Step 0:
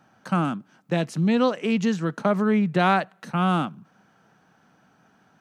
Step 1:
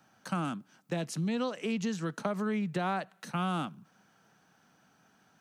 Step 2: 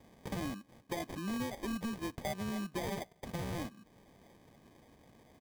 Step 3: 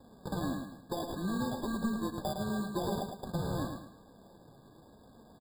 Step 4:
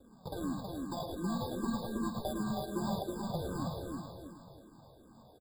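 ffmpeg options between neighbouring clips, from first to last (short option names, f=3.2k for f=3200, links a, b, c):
-filter_complex "[0:a]acrossover=split=250|1400[a][b][c];[c]alimiter=level_in=2dB:limit=-24dB:level=0:latency=1:release=141,volume=-2dB[d];[a][b][d]amix=inputs=3:normalize=0,acompressor=threshold=-22dB:ratio=4,highshelf=f=3.2k:g=10.5,volume=-7dB"
-af "aecho=1:1:3.3:0.83,acompressor=threshold=-47dB:ratio=2,acrusher=samples=32:mix=1:aa=0.000001,volume=3.5dB"
-filter_complex "[0:a]flanger=delay=3.6:depth=4.1:regen=64:speed=0.98:shape=triangular,asplit=2[a][b];[b]aecho=0:1:108|216|324|432:0.501|0.18|0.065|0.0234[c];[a][c]amix=inputs=2:normalize=0,afftfilt=real='re*eq(mod(floor(b*sr/1024/1700),2),0)':imag='im*eq(mod(floor(b*sr/1024/1700),2),0)':win_size=1024:overlap=0.75,volume=7.5dB"
-filter_complex "[0:a]asuperstop=centerf=1800:order=8:qfactor=4.1,aecho=1:1:321|642|963|1284|1605:0.668|0.267|0.107|0.0428|0.0171,asplit=2[a][b];[b]afreqshift=-2.6[c];[a][c]amix=inputs=2:normalize=1"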